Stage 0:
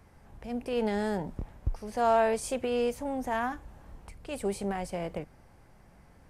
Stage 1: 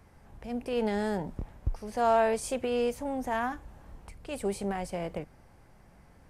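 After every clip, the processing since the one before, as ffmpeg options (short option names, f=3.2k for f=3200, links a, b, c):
-af anull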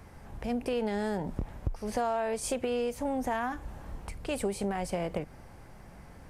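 -af "acompressor=threshold=-35dB:ratio=6,volume=7dB"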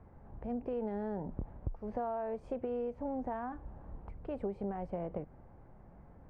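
-af "lowpass=1k,volume=-5.5dB"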